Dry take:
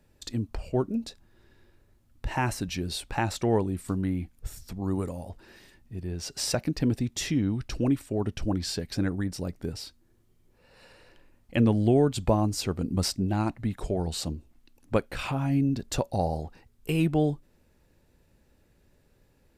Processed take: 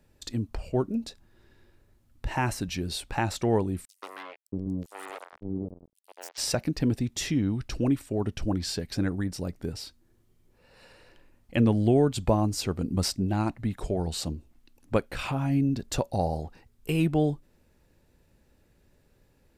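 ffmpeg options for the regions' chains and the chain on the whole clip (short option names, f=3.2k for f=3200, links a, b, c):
-filter_complex "[0:a]asettb=1/sr,asplit=3[a][b][c];[a]atrim=end=3.854[d];[b]atrim=start=3.85:end=6.38,asetpts=PTS-STARTPTS,afade=t=in:d=0.004:c=qsin,afade=t=out:st=2.526:d=0.004:c=qsin,highpass=f=190:p=1,acrusher=bits=4:mix=0:aa=0.5,acrossover=split=500|5500[e][f][g];[f]adelay=130[h];[e]adelay=630[i];[i][h][g]amix=inputs=3:normalize=0,atrim=end_sample=111573[j];[c]atrim=start=6.376[k];[d][j]acrossfade=d=0.004:c1=hsin:c2=qsin[l];[l][k]acrossfade=d=0.004:c1=qsin:c2=hsin"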